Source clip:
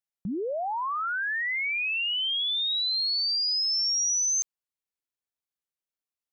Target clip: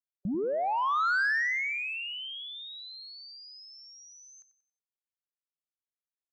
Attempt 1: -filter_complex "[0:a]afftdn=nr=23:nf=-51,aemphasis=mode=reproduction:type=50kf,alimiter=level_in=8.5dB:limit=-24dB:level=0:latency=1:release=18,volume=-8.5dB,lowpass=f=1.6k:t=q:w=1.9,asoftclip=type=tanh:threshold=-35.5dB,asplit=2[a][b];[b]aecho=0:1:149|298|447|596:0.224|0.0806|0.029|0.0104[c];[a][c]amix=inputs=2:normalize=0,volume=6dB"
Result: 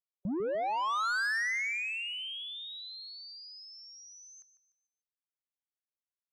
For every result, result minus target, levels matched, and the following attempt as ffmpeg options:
echo 57 ms late; soft clip: distortion +8 dB
-filter_complex "[0:a]afftdn=nr=23:nf=-51,aemphasis=mode=reproduction:type=50kf,alimiter=level_in=8.5dB:limit=-24dB:level=0:latency=1:release=18,volume=-8.5dB,lowpass=f=1.6k:t=q:w=1.9,asoftclip=type=tanh:threshold=-35.5dB,asplit=2[a][b];[b]aecho=0:1:92|184|276|368:0.224|0.0806|0.029|0.0104[c];[a][c]amix=inputs=2:normalize=0,volume=6dB"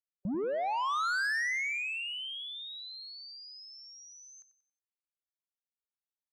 soft clip: distortion +8 dB
-filter_complex "[0:a]afftdn=nr=23:nf=-51,aemphasis=mode=reproduction:type=50kf,alimiter=level_in=8.5dB:limit=-24dB:level=0:latency=1:release=18,volume=-8.5dB,lowpass=f=1.6k:t=q:w=1.9,asoftclip=type=tanh:threshold=-29dB,asplit=2[a][b];[b]aecho=0:1:92|184|276|368:0.224|0.0806|0.029|0.0104[c];[a][c]amix=inputs=2:normalize=0,volume=6dB"

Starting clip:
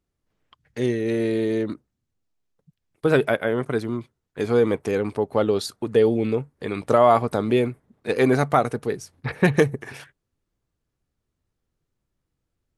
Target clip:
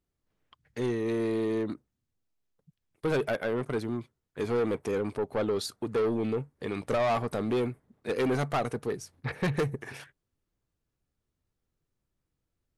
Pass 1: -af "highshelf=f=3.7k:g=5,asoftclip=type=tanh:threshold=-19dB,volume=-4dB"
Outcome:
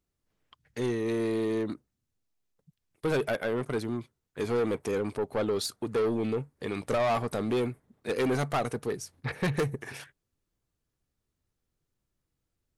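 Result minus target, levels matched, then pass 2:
8000 Hz band +3.5 dB
-af "asoftclip=type=tanh:threshold=-19dB,volume=-4dB"

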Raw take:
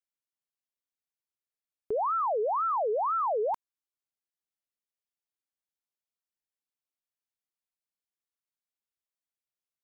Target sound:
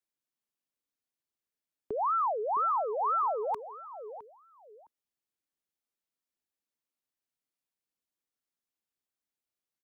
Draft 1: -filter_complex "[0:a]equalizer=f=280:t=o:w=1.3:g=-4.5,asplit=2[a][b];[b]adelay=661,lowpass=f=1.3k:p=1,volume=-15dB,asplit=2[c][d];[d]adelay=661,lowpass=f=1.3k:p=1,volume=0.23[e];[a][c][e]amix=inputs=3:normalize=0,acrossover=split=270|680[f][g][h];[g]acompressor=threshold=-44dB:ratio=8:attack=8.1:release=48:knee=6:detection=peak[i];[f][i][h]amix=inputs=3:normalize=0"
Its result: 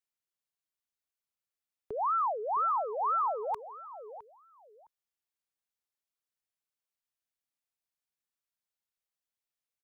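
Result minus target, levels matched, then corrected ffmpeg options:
250 Hz band -5.0 dB
-filter_complex "[0:a]equalizer=f=280:t=o:w=1.3:g=6.5,asplit=2[a][b];[b]adelay=661,lowpass=f=1.3k:p=1,volume=-15dB,asplit=2[c][d];[d]adelay=661,lowpass=f=1.3k:p=1,volume=0.23[e];[a][c][e]amix=inputs=3:normalize=0,acrossover=split=270|680[f][g][h];[g]acompressor=threshold=-44dB:ratio=8:attack=8.1:release=48:knee=6:detection=peak[i];[f][i][h]amix=inputs=3:normalize=0"

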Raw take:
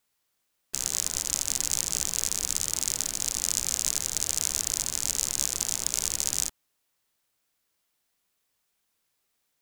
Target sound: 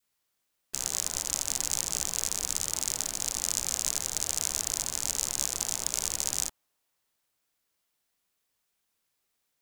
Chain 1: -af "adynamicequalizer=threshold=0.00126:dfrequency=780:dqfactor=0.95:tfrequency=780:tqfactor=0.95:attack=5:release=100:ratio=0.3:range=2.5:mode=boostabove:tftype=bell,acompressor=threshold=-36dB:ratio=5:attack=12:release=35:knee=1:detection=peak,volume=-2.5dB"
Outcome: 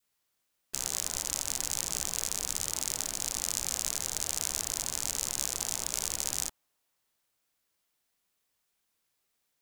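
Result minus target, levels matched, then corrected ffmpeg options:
compressor: peak gain reduction +8 dB
-af "adynamicequalizer=threshold=0.00126:dfrequency=780:dqfactor=0.95:tfrequency=780:tqfactor=0.95:attack=5:release=100:ratio=0.3:range=2.5:mode=boostabove:tftype=bell,volume=-2.5dB"

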